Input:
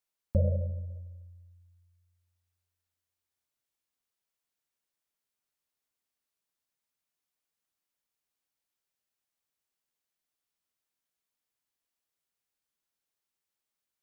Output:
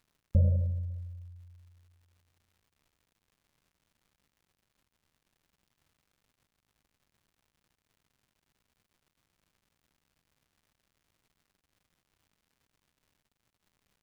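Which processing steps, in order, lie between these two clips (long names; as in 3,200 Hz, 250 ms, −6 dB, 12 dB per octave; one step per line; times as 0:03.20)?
surface crackle 250 per second −50 dBFS
bass and treble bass +11 dB, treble −3 dB
level −8 dB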